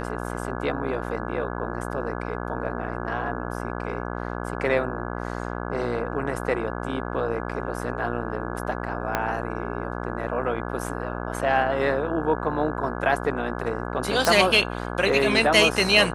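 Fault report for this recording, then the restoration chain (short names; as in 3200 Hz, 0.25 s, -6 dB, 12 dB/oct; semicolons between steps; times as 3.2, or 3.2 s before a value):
buzz 60 Hz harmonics 28 -31 dBFS
9.15 pop -8 dBFS
14.25 pop -5 dBFS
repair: de-click; de-hum 60 Hz, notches 28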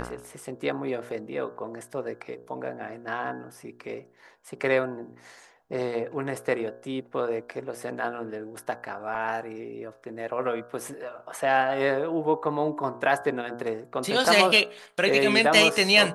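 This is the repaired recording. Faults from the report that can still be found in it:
9.15 pop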